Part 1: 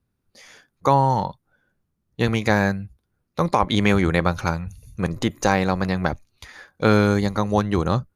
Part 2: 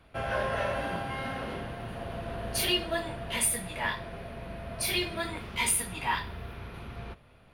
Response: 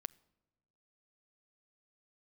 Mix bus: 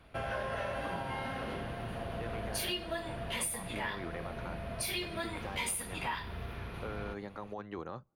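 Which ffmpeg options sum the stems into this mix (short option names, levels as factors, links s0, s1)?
-filter_complex "[0:a]acrossover=split=2700[s0][s1];[s1]acompressor=threshold=0.0126:ratio=4:attack=1:release=60[s2];[s0][s2]amix=inputs=2:normalize=0,acrossover=split=270 3700:gain=0.251 1 0.178[s3][s4][s5];[s3][s4][s5]amix=inputs=3:normalize=0,alimiter=limit=0.168:level=0:latency=1:release=17,volume=0.15,asplit=2[s6][s7];[s7]volume=0.316[s8];[1:a]volume=1[s9];[2:a]atrim=start_sample=2205[s10];[s8][s10]afir=irnorm=-1:irlink=0[s11];[s6][s9][s11]amix=inputs=3:normalize=0,acompressor=threshold=0.0178:ratio=3"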